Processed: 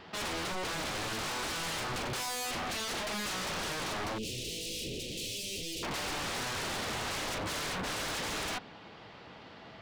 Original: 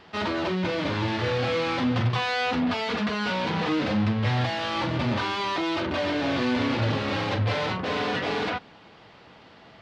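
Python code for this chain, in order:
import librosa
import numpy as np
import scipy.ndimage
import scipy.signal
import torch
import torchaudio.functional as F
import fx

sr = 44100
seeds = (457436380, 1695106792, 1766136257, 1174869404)

y = 10.0 ** (-31.0 / 20.0) * (np.abs((x / 10.0 ** (-31.0 / 20.0) + 3.0) % 4.0 - 2.0) - 1.0)
y = fx.ellip_bandstop(y, sr, low_hz=480.0, high_hz=2700.0, order=3, stop_db=60, at=(4.18, 5.83))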